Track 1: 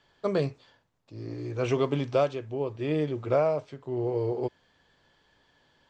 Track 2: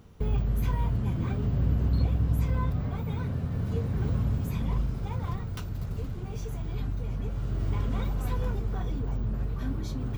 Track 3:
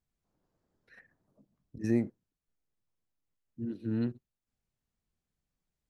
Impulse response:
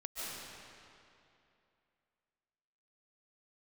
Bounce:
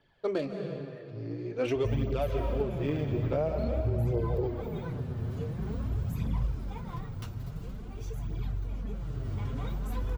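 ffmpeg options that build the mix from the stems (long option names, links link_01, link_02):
-filter_complex "[0:a]equalizer=frequency=1100:width=2.2:gain=-6,adynamicsmooth=sensitivity=7.5:basefreq=3600,volume=0.5dB,asplit=2[link_01][link_02];[link_02]volume=-5.5dB[link_03];[1:a]adelay=1650,volume=-2dB,asplit=2[link_04][link_05];[link_05]volume=-14.5dB[link_06];[2:a]asubboost=boost=8.5:cutoff=180,aecho=1:1:1.6:0.99,volume=-4.5dB[link_07];[3:a]atrim=start_sample=2205[link_08];[link_03][link_06]amix=inputs=2:normalize=0[link_09];[link_09][link_08]afir=irnorm=-1:irlink=0[link_10];[link_01][link_04][link_07][link_10]amix=inputs=4:normalize=0,flanger=delay=0.1:depth=8.7:regen=-6:speed=0.48:shape=triangular,alimiter=limit=-20dB:level=0:latency=1:release=277"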